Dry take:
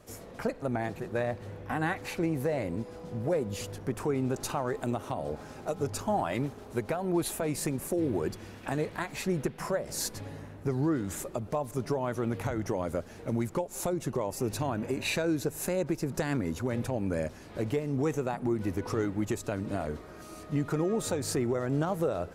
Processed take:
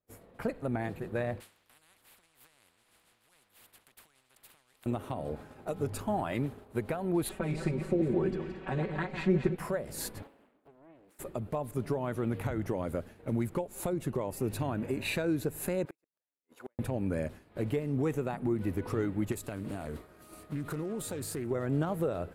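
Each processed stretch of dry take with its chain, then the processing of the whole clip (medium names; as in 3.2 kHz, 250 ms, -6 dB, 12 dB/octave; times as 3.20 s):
1.40–4.86 s: peaking EQ 4.1 kHz +13 dB 2.9 oct + compression 2:1, threshold -37 dBFS + spectrum-flattening compressor 10:1
7.29–9.56 s: backward echo that repeats 113 ms, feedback 54%, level -7 dB + distance through air 140 m + comb 5.3 ms, depth 78%
10.22–11.19 s: steep high-pass 210 Hz + compression 8:1, threshold -43 dBFS + loudspeaker Doppler distortion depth 0.88 ms
15.85–16.79 s: high-pass 520 Hz + inverted gate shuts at -29 dBFS, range -36 dB
19.32–21.51 s: treble shelf 4.4 kHz +11 dB + compression 3:1, threshold -32 dBFS + loudspeaker Doppler distortion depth 0.26 ms
whole clip: peaking EQ 5.9 kHz -12 dB 0.77 oct; expander -38 dBFS; dynamic bell 850 Hz, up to -4 dB, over -44 dBFS, Q 0.72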